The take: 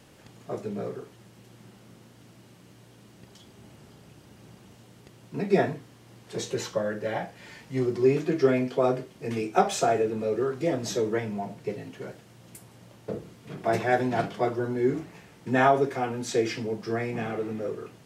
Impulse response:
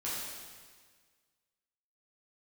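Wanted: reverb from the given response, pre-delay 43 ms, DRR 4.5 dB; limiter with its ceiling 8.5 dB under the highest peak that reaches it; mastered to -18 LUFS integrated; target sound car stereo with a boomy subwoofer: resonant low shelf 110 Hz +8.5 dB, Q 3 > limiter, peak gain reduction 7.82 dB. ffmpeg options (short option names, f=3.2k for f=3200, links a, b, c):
-filter_complex "[0:a]alimiter=limit=-17dB:level=0:latency=1,asplit=2[a][b];[1:a]atrim=start_sample=2205,adelay=43[c];[b][c]afir=irnorm=-1:irlink=0,volume=-8.5dB[d];[a][d]amix=inputs=2:normalize=0,lowshelf=f=110:t=q:w=3:g=8.5,volume=14.5dB,alimiter=limit=-8dB:level=0:latency=1"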